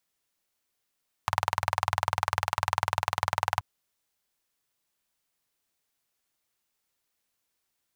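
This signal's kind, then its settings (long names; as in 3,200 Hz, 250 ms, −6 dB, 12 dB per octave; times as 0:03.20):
pulse-train model of a single-cylinder engine, steady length 2.33 s, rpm 2,400, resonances 97/920 Hz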